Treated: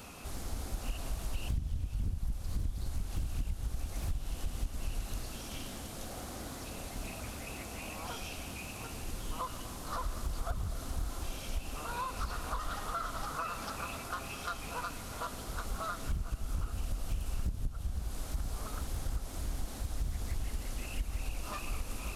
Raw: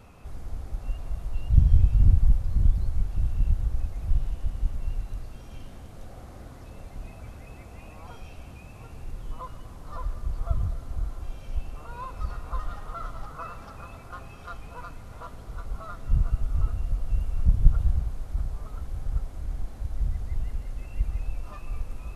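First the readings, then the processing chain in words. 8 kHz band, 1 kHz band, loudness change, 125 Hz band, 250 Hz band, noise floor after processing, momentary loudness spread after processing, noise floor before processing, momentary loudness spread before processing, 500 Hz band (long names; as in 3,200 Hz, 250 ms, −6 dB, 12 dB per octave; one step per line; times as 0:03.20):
can't be measured, +2.0 dB, −9.5 dB, −11.0 dB, −2.5 dB, −44 dBFS, 4 LU, −45 dBFS, 21 LU, +1.0 dB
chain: spectral tilt +2.5 dB per octave
downward compressor 12 to 1, threshold −37 dBFS, peak gain reduction 18.5 dB
octave-band graphic EQ 125/250/500/1,000/2,000 Hz −4/+3/−3/−3/−4 dB
highs frequency-modulated by the lows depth 0.96 ms
level +8 dB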